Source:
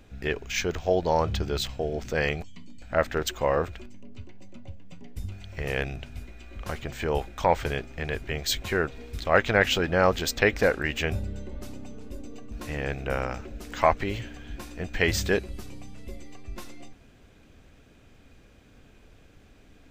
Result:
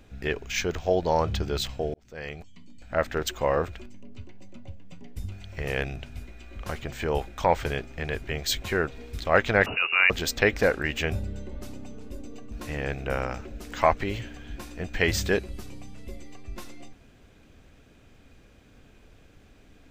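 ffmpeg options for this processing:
ffmpeg -i in.wav -filter_complex "[0:a]asettb=1/sr,asplit=3[link_01][link_02][link_03];[link_01]atrim=end=9.664[link_04];[link_02]atrim=start=9.66:end=10.1,asetpts=PTS-STARTPTS,afade=type=in:duration=0.004:curve=qsin,afade=type=out:start_time=0.436:duration=0.004:curve=qsin,lowpass=frequency=2500:width_type=q:width=0.5098,lowpass=frequency=2500:width_type=q:width=0.6013,lowpass=frequency=2500:width_type=q:width=0.9,lowpass=frequency=2500:width_type=q:width=2.563,afreqshift=-2900[link_05];[link_03]atrim=start=10.096[link_06];[link_04][link_05]acrossfade=duration=0.004:curve1=hsin:curve2=qsin[link_07];[link_07][link_06]acrossfade=duration=0.004:curve1=qsin:curve2=hsin,asplit=2[link_08][link_09];[link_08]atrim=end=1.94,asetpts=PTS-STARTPTS,afade=type=out:start_time=1.936:duration=0.004:curve=hsin[link_10];[link_09]atrim=start=1.94,asetpts=PTS-STARTPTS,afade=type=in:duration=1.66:curve=qsin[link_11];[link_10][link_11]concat=n=2:v=0:a=1" out.wav

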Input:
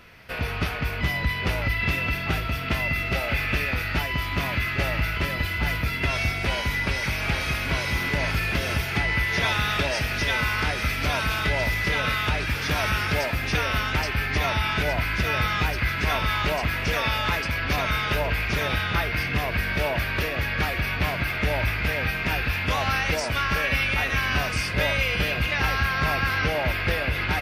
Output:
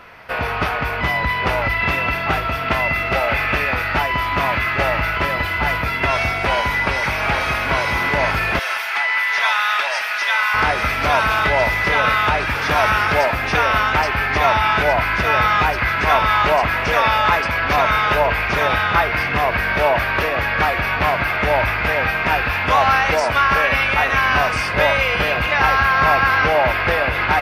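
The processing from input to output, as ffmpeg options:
ffmpeg -i in.wav -filter_complex "[0:a]asettb=1/sr,asplit=3[link_01][link_02][link_03];[link_01]atrim=end=8.594[link_04];[link_02]atrim=start=8.59:end=10.54,asetpts=PTS-STARTPTS,afade=type=in:duration=0.004:curve=qsin,afade=type=out:start_time=1.946:duration=0.004:curve=qsin,highpass=1100[link_05];[link_03]atrim=start=10.536[link_06];[link_04][link_05]acrossfade=duration=0.004:curve1=hsin:curve2=qsin[link_07];[link_07][link_06]acrossfade=duration=0.004:curve1=qsin:curve2=hsin,equalizer=frequency=930:width_type=o:width=2.3:gain=14" out.wav

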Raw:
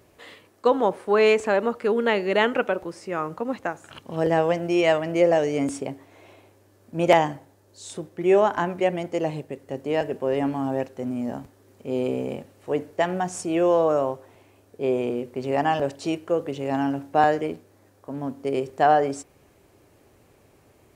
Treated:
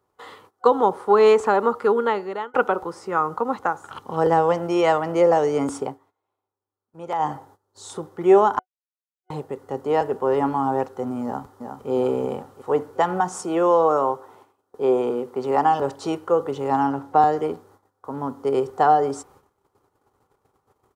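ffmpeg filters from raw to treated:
ffmpeg -i in.wav -filter_complex "[0:a]asplit=2[link_01][link_02];[link_02]afade=type=in:start_time=11.24:duration=0.01,afade=type=out:start_time=11.89:duration=0.01,aecho=0:1:360|720|1080|1440|1800|2160:0.473151|0.236576|0.118288|0.0591439|0.029572|0.014786[link_03];[link_01][link_03]amix=inputs=2:normalize=0,asettb=1/sr,asplit=3[link_04][link_05][link_06];[link_04]atrim=end=13.204[link_07];[link_05]atrim=start=13.2:end=15.82,asetpts=PTS-STARTPTS,afade=type=in:duration=0.004:curve=qsin,afade=type=out:start_time=2.616:duration=0.004:curve=qsin,highpass=150[link_08];[link_06]atrim=start=15.816[link_09];[link_07][link_08]acrossfade=duration=0.004:curve1=hsin:curve2=qsin[link_10];[link_10][link_09]acrossfade=duration=0.004:curve1=qsin:curve2=hsin,asettb=1/sr,asplit=3[link_11][link_12][link_13];[link_11]atrim=end=16.874[link_14];[link_12]atrim=start=16.87:end=17.37,asetpts=PTS-STARTPTS,afade=type=in:duration=0.004:curve=qsin,afade=type=out:start_time=0.496:duration=0.004:curve=qsin,highshelf=frequency=7300:gain=-6.5[link_15];[link_13]atrim=start=17.366[link_16];[link_14][link_15]acrossfade=duration=0.004:curve1=hsin:curve2=qsin[link_17];[link_17][link_16]acrossfade=duration=0.004:curve1=qsin:curve2=hsin,asplit=6[link_18][link_19][link_20][link_21][link_22][link_23];[link_18]atrim=end=2.54,asetpts=PTS-STARTPTS,afade=type=out:start_time=1.79:duration=0.75[link_24];[link_19]atrim=start=2.54:end=5.99,asetpts=PTS-STARTPTS,afade=type=in:duration=0.004:curve=hsin,afade=type=out:start_time=3.31:duration=0.14:silence=0.16788[link_25];[link_20]atrim=start=5.99:end=7.18,asetpts=PTS-STARTPTS,volume=-15.5dB[link_26];[link_21]atrim=start=7.18:end=8.59,asetpts=PTS-STARTPTS,afade=type=in:duration=0.14:silence=0.16788,afade=type=out:start_time=1.406:duration=0.004:curve=hsin[link_27];[link_22]atrim=start=8.59:end=9.3,asetpts=PTS-STARTPTS,volume=0[link_28];[link_23]atrim=start=9.3,asetpts=PTS-STARTPTS,afade=type=in:duration=0.004:curve=hsin[link_29];[link_24][link_25][link_26][link_27][link_28][link_29]concat=n=6:v=0:a=1,agate=range=-19dB:threshold=-54dB:ratio=16:detection=peak,superequalizer=7b=1.78:9b=3.55:10b=3.55:12b=0.562,acrossover=split=470|3000[link_30][link_31][link_32];[link_31]acompressor=threshold=-17dB:ratio=6[link_33];[link_30][link_33][link_32]amix=inputs=3:normalize=0" out.wav

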